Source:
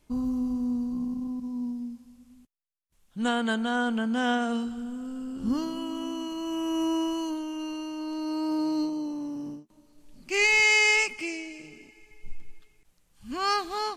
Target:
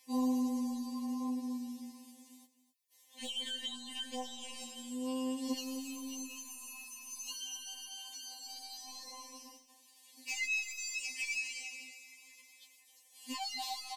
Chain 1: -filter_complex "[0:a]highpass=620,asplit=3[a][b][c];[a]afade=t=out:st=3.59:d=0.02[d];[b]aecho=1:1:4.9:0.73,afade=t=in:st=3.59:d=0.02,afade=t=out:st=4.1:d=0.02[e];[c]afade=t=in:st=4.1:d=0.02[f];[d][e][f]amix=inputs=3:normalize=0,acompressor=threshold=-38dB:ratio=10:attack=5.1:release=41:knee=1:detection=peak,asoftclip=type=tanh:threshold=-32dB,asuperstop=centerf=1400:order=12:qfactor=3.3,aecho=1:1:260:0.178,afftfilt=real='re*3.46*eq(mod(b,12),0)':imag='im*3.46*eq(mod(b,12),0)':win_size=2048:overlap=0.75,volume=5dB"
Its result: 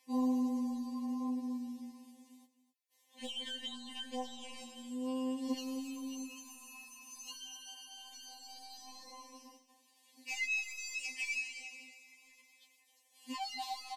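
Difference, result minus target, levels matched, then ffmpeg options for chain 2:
8000 Hz band -5.0 dB
-filter_complex "[0:a]highpass=620,highshelf=f=3k:g=9,asplit=3[a][b][c];[a]afade=t=out:st=3.59:d=0.02[d];[b]aecho=1:1:4.9:0.73,afade=t=in:st=3.59:d=0.02,afade=t=out:st=4.1:d=0.02[e];[c]afade=t=in:st=4.1:d=0.02[f];[d][e][f]amix=inputs=3:normalize=0,acompressor=threshold=-38dB:ratio=10:attack=5.1:release=41:knee=1:detection=peak,asoftclip=type=tanh:threshold=-32dB,asuperstop=centerf=1400:order=12:qfactor=3.3,aecho=1:1:260:0.178,afftfilt=real='re*3.46*eq(mod(b,12),0)':imag='im*3.46*eq(mod(b,12),0)':win_size=2048:overlap=0.75,volume=5dB"

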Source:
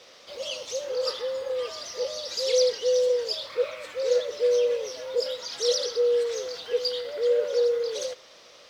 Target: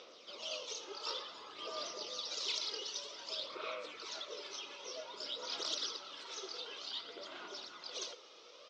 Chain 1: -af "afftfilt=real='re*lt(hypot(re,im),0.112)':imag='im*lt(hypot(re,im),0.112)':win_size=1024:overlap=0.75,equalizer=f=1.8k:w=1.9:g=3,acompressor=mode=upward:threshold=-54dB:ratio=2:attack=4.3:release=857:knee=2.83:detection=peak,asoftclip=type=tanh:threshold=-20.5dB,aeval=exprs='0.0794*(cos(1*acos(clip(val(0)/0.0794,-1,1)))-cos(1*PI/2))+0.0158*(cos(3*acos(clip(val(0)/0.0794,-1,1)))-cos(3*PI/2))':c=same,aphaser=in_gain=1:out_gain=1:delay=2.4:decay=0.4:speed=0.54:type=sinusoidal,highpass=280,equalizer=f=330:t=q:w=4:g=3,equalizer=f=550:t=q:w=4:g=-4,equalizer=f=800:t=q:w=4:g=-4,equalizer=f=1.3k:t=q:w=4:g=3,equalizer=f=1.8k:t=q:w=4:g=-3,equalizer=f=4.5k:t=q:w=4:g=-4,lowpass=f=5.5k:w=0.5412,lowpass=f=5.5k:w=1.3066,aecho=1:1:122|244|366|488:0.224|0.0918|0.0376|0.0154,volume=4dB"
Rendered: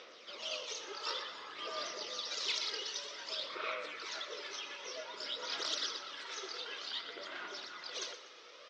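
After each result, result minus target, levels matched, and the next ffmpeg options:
echo-to-direct +10.5 dB; 2000 Hz band +5.0 dB
-af "afftfilt=real='re*lt(hypot(re,im),0.112)':imag='im*lt(hypot(re,im),0.112)':win_size=1024:overlap=0.75,equalizer=f=1.8k:w=1.9:g=3,acompressor=mode=upward:threshold=-54dB:ratio=2:attack=4.3:release=857:knee=2.83:detection=peak,asoftclip=type=tanh:threshold=-20.5dB,aeval=exprs='0.0794*(cos(1*acos(clip(val(0)/0.0794,-1,1)))-cos(1*PI/2))+0.0158*(cos(3*acos(clip(val(0)/0.0794,-1,1)))-cos(3*PI/2))':c=same,aphaser=in_gain=1:out_gain=1:delay=2.4:decay=0.4:speed=0.54:type=sinusoidal,highpass=280,equalizer=f=330:t=q:w=4:g=3,equalizer=f=550:t=q:w=4:g=-4,equalizer=f=800:t=q:w=4:g=-4,equalizer=f=1.3k:t=q:w=4:g=3,equalizer=f=1.8k:t=q:w=4:g=-3,equalizer=f=4.5k:t=q:w=4:g=-4,lowpass=f=5.5k:w=0.5412,lowpass=f=5.5k:w=1.3066,aecho=1:1:122|244|366:0.0668|0.0274|0.0112,volume=4dB"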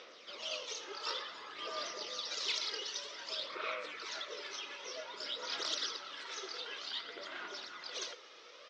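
2000 Hz band +4.5 dB
-af "afftfilt=real='re*lt(hypot(re,im),0.112)':imag='im*lt(hypot(re,im),0.112)':win_size=1024:overlap=0.75,equalizer=f=1.8k:w=1.9:g=-7.5,acompressor=mode=upward:threshold=-54dB:ratio=2:attack=4.3:release=857:knee=2.83:detection=peak,asoftclip=type=tanh:threshold=-20.5dB,aeval=exprs='0.0794*(cos(1*acos(clip(val(0)/0.0794,-1,1)))-cos(1*PI/2))+0.0158*(cos(3*acos(clip(val(0)/0.0794,-1,1)))-cos(3*PI/2))':c=same,aphaser=in_gain=1:out_gain=1:delay=2.4:decay=0.4:speed=0.54:type=sinusoidal,highpass=280,equalizer=f=330:t=q:w=4:g=3,equalizer=f=550:t=q:w=4:g=-4,equalizer=f=800:t=q:w=4:g=-4,equalizer=f=1.3k:t=q:w=4:g=3,equalizer=f=1.8k:t=q:w=4:g=-3,equalizer=f=4.5k:t=q:w=4:g=-4,lowpass=f=5.5k:w=0.5412,lowpass=f=5.5k:w=1.3066,aecho=1:1:122|244|366:0.0668|0.0274|0.0112,volume=4dB"

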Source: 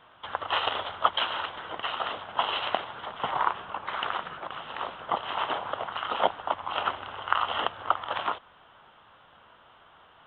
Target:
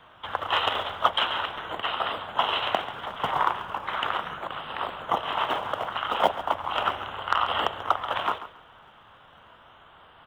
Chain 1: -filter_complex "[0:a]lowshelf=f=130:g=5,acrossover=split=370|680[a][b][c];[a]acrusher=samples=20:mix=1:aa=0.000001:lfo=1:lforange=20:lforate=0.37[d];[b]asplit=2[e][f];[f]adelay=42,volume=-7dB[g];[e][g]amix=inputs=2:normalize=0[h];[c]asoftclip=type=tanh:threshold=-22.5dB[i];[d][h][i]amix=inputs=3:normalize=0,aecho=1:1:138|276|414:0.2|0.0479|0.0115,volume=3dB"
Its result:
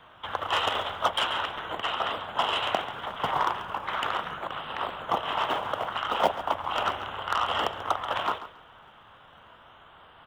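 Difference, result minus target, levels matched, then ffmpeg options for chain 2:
soft clip: distortion +9 dB
-filter_complex "[0:a]lowshelf=f=130:g=5,acrossover=split=370|680[a][b][c];[a]acrusher=samples=20:mix=1:aa=0.000001:lfo=1:lforange=20:lforate=0.37[d];[b]asplit=2[e][f];[f]adelay=42,volume=-7dB[g];[e][g]amix=inputs=2:normalize=0[h];[c]asoftclip=type=tanh:threshold=-12dB[i];[d][h][i]amix=inputs=3:normalize=0,aecho=1:1:138|276|414:0.2|0.0479|0.0115,volume=3dB"

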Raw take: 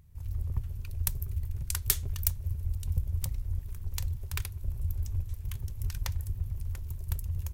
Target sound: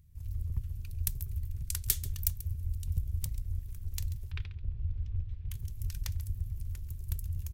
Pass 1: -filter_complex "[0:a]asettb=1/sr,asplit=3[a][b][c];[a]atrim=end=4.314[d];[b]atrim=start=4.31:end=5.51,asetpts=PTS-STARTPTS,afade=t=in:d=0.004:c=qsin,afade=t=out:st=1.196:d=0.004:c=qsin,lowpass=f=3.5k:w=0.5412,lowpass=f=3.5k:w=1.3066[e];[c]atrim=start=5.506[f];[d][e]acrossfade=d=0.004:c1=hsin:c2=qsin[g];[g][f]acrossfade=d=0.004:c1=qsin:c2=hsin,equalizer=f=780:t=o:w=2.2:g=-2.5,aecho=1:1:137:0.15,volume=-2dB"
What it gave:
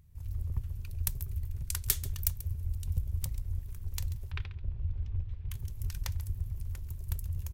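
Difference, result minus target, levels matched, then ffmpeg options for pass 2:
1000 Hz band +7.0 dB
-filter_complex "[0:a]asettb=1/sr,asplit=3[a][b][c];[a]atrim=end=4.314[d];[b]atrim=start=4.31:end=5.51,asetpts=PTS-STARTPTS,afade=t=in:d=0.004:c=qsin,afade=t=out:st=1.196:d=0.004:c=qsin,lowpass=f=3.5k:w=0.5412,lowpass=f=3.5k:w=1.3066[e];[c]atrim=start=5.506[f];[d][e]acrossfade=d=0.004:c1=hsin:c2=qsin[g];[g][f]acrossfade=d=0.004:c1=qsin:c2=hsin,equalizer=f=780:t=o:w=2.2:g=-11.5,aecho=1:1:137:0.15,volume=-2dB"

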